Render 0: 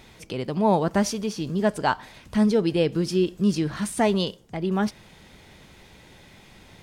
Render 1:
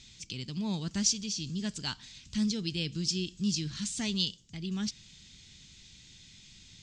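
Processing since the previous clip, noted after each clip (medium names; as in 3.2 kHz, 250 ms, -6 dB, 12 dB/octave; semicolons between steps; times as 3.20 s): FFT filter 140 Hz 0 dB, 260 Hz -5 dB, 560 Hz -21 dB, 800 Hz -19 dB, 1.9 kHz -6 dB, 2.9 kHz +4 dB, 4.1 kHz +9 dB, 7.4 kHz +12 dB, 11 kHz -21 dB; trim -6 dB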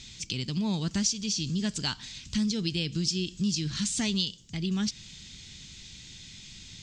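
compression 3:1, threshold -34 dBFS, peak gain reduction 9 dB; trim +7.5 dB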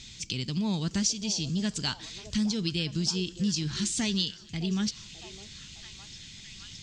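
repeats whose band climbs or falls 611 ms, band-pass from 540 Hz, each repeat 0.7 oct, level -7 dB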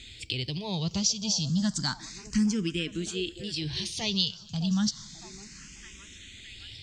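barber-pole phaser +0.31 Hz; trim +3.5 dB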